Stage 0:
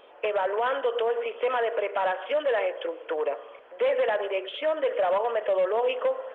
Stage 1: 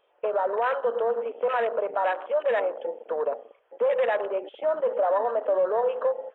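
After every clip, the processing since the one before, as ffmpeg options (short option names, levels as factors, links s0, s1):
-af "equalizer=f=250:t=o:w=0.48:g=-12,afwtdn=0.0251,volume=1.19"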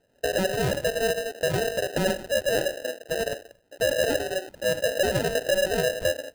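-af "acrusher=samples=39:mix=1:aa=0.000001"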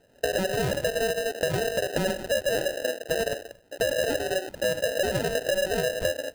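-af "acompressor=threshold=0.0316:ratio=6,volume=2.11"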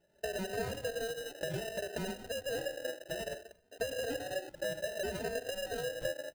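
-filter_complex "[0:a]asplit=2[s0][s1];[s1]adelay=3,afreqshift=0.63[s2];[s0][s2]amix=inputs=2:normalize=1,volume=0.398"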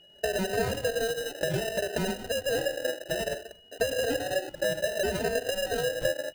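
-af "aeval=exprs='val(0)+0.000708*sin(2*PI*2900*n/s)':c=same,volume=2.66"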